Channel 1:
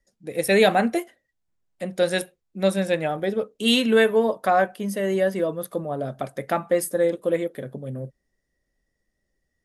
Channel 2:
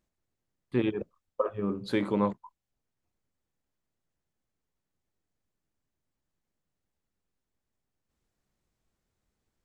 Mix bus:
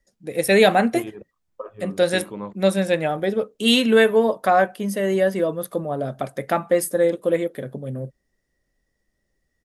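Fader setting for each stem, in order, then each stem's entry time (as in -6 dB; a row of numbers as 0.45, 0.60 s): +2.5, -6.0 dB; 0.00, 0.20 s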